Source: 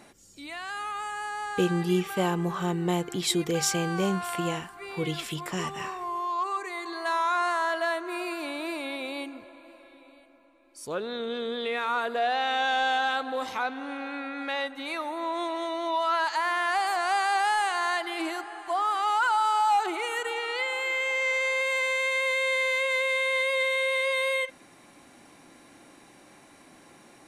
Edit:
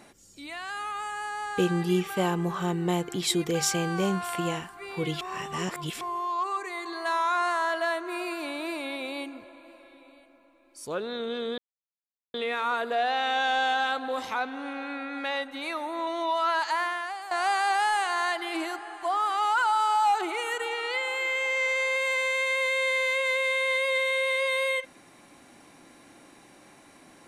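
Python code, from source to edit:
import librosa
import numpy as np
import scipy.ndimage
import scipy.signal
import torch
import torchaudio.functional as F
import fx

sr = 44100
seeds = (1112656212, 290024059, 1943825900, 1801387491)

y = fx.edit(x, sr, fx.reverse_span(start_s=5.21, length_s=0.8),
    fx.insert_silence(at_s=11.58, length_s=0.76),
    fx.cut(start_s=15.31, length_s=0.41),
    fx.fade_out_to(start_s=16.44, length_s=0.52, curve='qua', floor_db=-12.5), tone=tone)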